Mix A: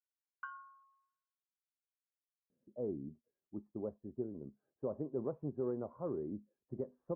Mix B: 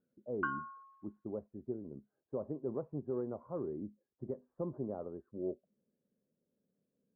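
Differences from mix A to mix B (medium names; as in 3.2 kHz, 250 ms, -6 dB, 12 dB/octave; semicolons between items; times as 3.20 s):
speech: entry -2.50 s; background +10.5 dB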